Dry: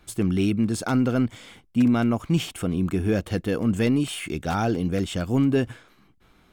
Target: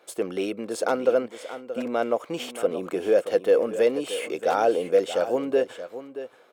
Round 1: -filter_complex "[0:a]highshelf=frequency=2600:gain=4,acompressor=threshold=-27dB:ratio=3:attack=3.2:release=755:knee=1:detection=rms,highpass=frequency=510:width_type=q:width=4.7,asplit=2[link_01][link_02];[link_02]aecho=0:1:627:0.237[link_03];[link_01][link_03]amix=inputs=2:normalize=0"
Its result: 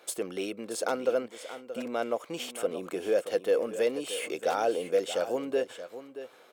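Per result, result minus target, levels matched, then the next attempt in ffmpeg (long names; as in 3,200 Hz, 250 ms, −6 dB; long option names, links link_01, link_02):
downward compressor: peak gain reduction +6.5 dB; 4,000 Hz band +4.0 dB
-filter_complex "[0:a]highshelf=frequency=2600:gain=4,acompressor=threshold=-17.5dB:ratio=3:attack=3.2:release=755:knee=1:detection=rms,highpass=frequency=510:width_type=q:width=4.7,asplit=2[link_01][link_02];[link_02]aecho=0:1:627:0.237[link_03];[link_01][link_03]amix=inputs=2:normalize=0"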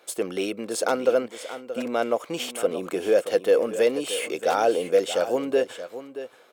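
4,000 Hz band +4.0 dB
-filter_complex "[0:a]highshelf=frequency=2600:gain=-3,acompressor=threshold=-17.5dB:ratio=3:attack=3.2:release=755:knee=1:detection=rms,highpass=frequency=510:width_type=q:width=4.7,asplit=2[link_01][link_02];[link_02]aecho=0:1:627:0.237[link_03];[link_01][link_03]amix=inputs=2:normalize=0"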